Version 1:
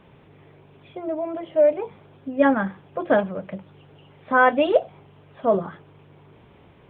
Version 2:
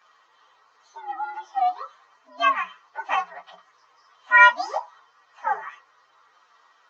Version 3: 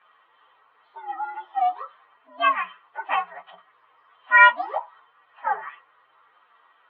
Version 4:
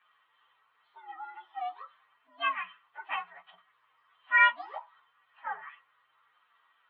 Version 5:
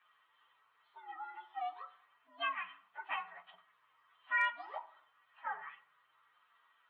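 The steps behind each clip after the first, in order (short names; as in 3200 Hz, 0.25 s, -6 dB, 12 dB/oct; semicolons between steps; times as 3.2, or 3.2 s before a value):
inharmonic rescaling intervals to 124%; resonant high-pass 1100 Hz, resonance Q 3.5; small resonant body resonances 1900/3100 Hz, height 16 dB, ringing for 0.1 s; gain -2 dB
steep low-pass 3400 Hz 48 dB/oct
bell 460 Hz -12.5 dB 2.7 oct; gain -4 dB
on a send at -14.5 dB: reverb RT60 0.65 s, pre-delay 3 ms; on the sum: hard clip -11 dBFS, distortion -40 dB; compressor 2:1, threshold -33 dBFS, peak gain reduction 9.5 dB; gain -2.5 dB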